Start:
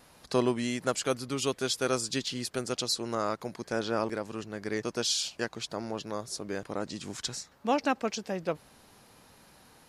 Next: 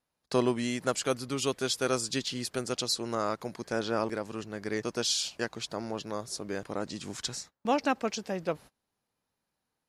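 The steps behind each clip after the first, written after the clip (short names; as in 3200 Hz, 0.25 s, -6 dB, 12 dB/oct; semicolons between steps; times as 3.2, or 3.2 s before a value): gate -46 dBFS, range -27 dB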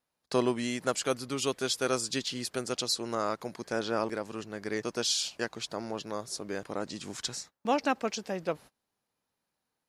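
low shelf 140 Hz -5.5 dB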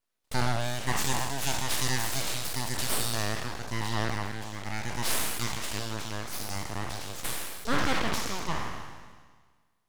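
spectral trails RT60 1.56 s; full-wave rectifier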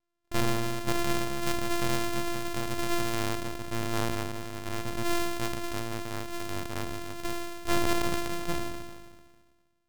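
sample sorter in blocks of 128 samples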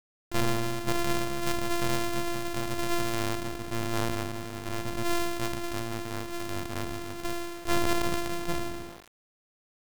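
sample gate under -39 dBFS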